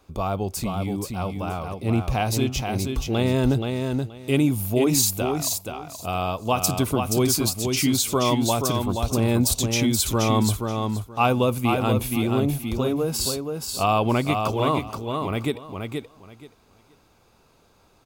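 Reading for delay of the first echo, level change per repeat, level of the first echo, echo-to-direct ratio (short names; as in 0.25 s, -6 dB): 0.477 s, -14.5 dB, -5.0 dB, -5.0 dB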